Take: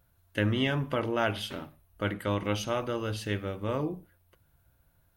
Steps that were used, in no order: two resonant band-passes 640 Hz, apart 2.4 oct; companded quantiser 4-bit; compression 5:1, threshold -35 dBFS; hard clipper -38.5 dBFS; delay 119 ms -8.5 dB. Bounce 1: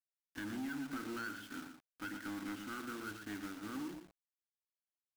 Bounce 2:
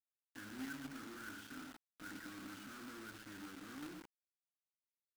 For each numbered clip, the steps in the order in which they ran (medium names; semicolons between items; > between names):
two resonant band-passes > companded quantiser > compression > hard clipper > delay; hard clipper > delay > compression > two resonant band-passes > companded quantiser